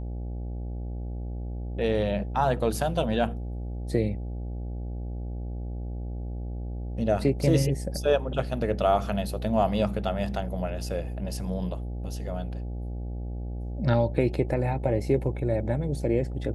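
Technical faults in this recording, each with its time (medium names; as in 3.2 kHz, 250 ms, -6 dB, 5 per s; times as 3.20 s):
buzz 60 Hz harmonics 14 -33 dBFS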